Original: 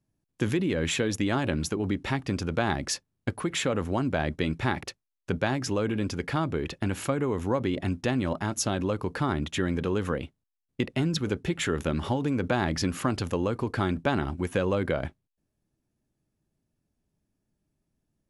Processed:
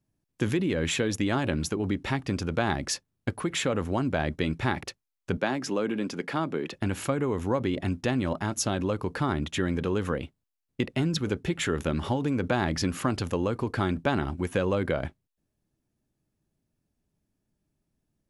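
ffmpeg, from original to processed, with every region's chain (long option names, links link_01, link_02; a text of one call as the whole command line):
ffmpeg -i in.wav -filter_complex "[0:a]asettb=1/sr,asplit=3[link_01][link_02][link_03];[link_01]atrim=end=5.374[link_04];[link_02]atrim=start=5.37:end=6.74,asetpts=PTS-STARTPTS,afade=type=in:duration=0.004:curve=qsin,afade=type=out:start_time=1.366:duration=0.004:curve=qsin,highpass=frequency=170:width=0.5412,highpass=frequency=170:width=1.3066,highshelf=frequency=4600:gain=-3.5[link_05];[link_03]atrim=start=6.736[link_06];[link_04][link_05]acrossfade=duration=0.004:curve1=hsin:curve2=qsin[link_07];[link_07][link_06]acrossfade=duration=0.004:curve1=qsin:curve2=hsin" out.wav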